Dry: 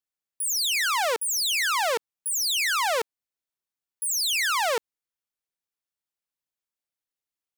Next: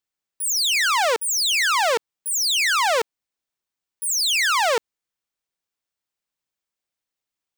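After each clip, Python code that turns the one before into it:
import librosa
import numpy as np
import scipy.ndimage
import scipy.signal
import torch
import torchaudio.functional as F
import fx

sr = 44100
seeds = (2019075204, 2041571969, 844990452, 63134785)

y = fx.peak_eq(x, sr, hz=12000.0, db=-10.0, octaves=0.36)
y = y * librosa.db_to_amplitude(5.0)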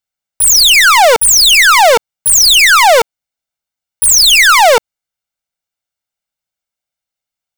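y = x + 0.52 * np.pad(x, (int(1.4 * sr / 1000.0), 0))[:len(x)]
y = fx.leveller(y, sr, passes=3)
y = y * librosa.db_to_amplitude(7.5)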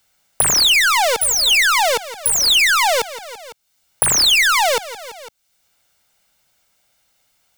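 y = fx.echo_feedback(x, sr, ms=168, feedback_pct=40, wet_db=-19.0)
y = fx.band_squash(y, sr, depth_pct=100)
y = y * librosa.db_to_amplitude(-9.5)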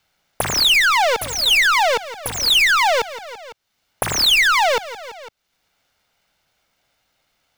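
y = scipy.signal.medfilt(x, 5)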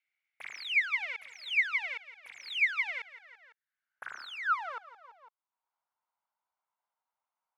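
y = fx.filter_sweep_bandpass(x, sr, from_hz=2200.0, to_hz=980.0, start_s=2.82, end_s=5.52, q=7.2)
y = y * librosa.db_to_amplitude(-8.0)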